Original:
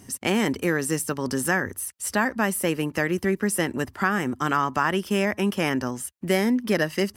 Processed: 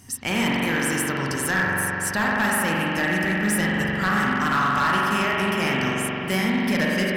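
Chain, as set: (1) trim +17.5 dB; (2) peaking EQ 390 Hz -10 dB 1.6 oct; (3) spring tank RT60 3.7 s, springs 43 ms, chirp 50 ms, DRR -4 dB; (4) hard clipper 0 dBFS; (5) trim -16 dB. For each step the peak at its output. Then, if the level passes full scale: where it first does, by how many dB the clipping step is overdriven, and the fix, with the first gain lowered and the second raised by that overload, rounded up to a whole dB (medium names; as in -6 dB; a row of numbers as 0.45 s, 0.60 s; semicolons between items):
+9.5 dBFS, +7.5 dBFS, +9.0 dBFS, 0.0 dBFS, -16.0 dBFS; step 1, 9.0 dB; step 1 +8.5 dB, step 5 -7 dB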